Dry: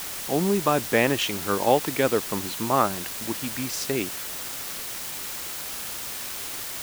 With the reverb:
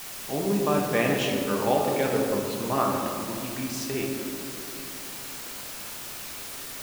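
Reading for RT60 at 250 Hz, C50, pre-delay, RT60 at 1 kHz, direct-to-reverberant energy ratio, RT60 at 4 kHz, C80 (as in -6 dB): 3.7 s, 2.0 dB, 5 ms, 2.2 s, -1.5 dB, 1.1 s, 3.0 dB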